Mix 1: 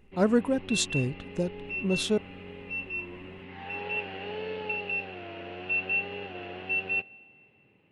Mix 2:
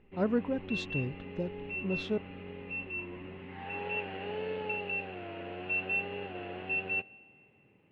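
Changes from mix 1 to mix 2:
speech -5.5 dB; master: add distance through air 250 m

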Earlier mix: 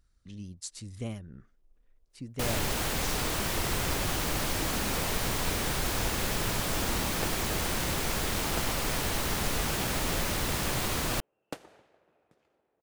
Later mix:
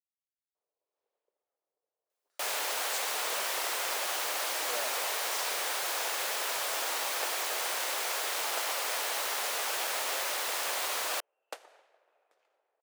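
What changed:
speech: entry +2.30 s; master: add high-pass 520 Hz 24 dB/octave

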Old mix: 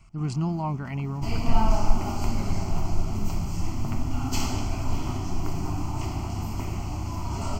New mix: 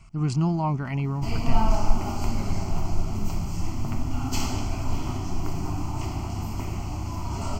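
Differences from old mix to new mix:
speech +3.5 dB; reverb: off

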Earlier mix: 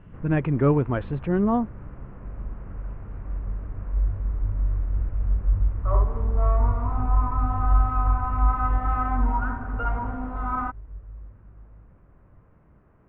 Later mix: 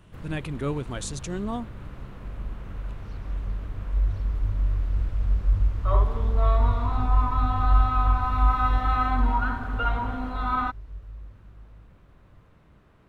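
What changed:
speech -9.5 dB; master: remove Bessel low-pass 1.4 kHz, order 8

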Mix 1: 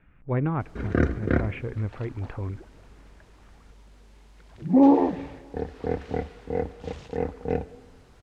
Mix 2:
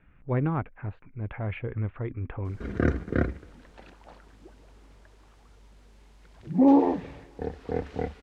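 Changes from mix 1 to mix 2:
background: entry +1.85 s; reverb: off

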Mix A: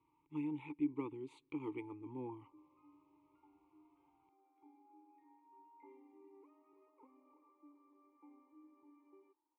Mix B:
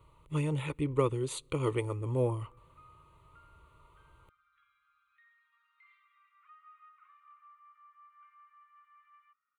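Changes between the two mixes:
background: add steep high-pass 1.2 kHz 96 dB/octave; master: remove vowel filter u

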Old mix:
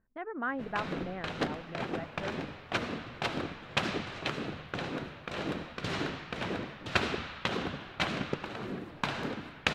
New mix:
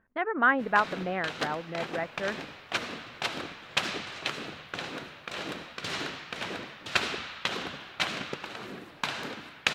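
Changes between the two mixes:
speech +11.0 dB; master: add tilt EQ +2.5 dB/octave

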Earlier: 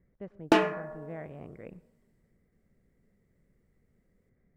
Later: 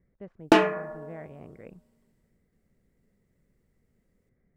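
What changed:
background +4.5 dB; reverb: off

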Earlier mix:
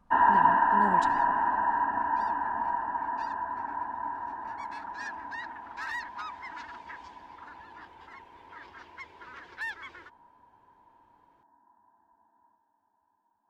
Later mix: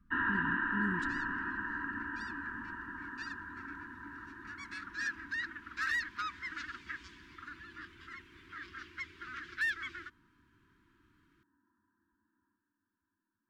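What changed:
speech: add treble shelf 2.3 kHz -11.5 dB; second sound +4.0 dB; master: add elliptic band-stop 340–1300 Hz, stop band 70 dB

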